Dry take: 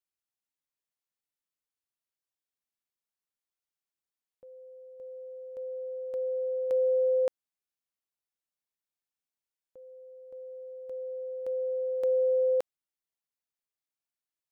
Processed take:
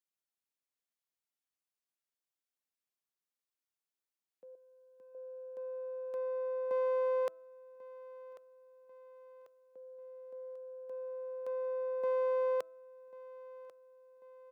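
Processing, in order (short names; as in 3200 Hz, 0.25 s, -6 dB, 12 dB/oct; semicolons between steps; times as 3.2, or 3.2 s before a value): one diode to ground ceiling -30.5 dBFS; steep high-pass 170 Hz; de-hum 326.1 Hz, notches 4; 4.55–5.15 bell 610 Hz -15 dB 0.79 oct; on a send: feedback echo 1.092 s, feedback 53%, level -18 dB; on the sum: gain -3 dB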